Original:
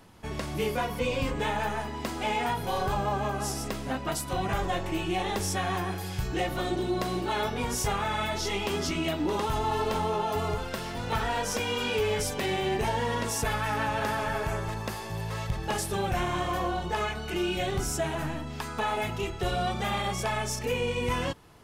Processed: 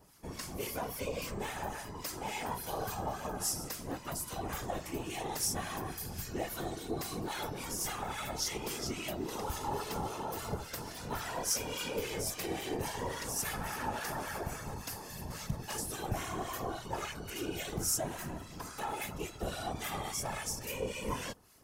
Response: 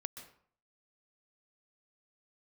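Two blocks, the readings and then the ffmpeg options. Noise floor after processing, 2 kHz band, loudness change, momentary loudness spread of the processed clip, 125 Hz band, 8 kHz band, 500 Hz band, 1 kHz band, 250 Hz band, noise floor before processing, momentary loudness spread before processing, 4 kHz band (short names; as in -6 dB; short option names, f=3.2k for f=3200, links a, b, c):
-47 dBFS, -9.5 dB, -7.5 dB, 7 LU, -9.5 dB, -0.5 dB, -9.5 dB, -9.5 dB, -8.5 dB, -37 dBFS, 5 LU, -7.0 dB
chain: -filter_complex "[0:a]aexciter=amount=2.9:drive=5.9:freq=4.8k,acrossover=split=1200[a][b];[a]aeval=exprs='val(0)*(1-0.7/2+0.7/2*cos(2*PI*3.6*n/s))':c=same[c];[b]aeval=exprs='val(0)*(1-0.7/2-0.7/2*cos(2*PI*3.6*n/s))':c=same[d];[c][d]amix=inputs=2:normalize=0,afftfilt=real='hypot(re,im)*cos(2*PI*random(0))':imag='hypot(re,im)*sin(2*PI*random(1))':win_size=512:overlap=0.75"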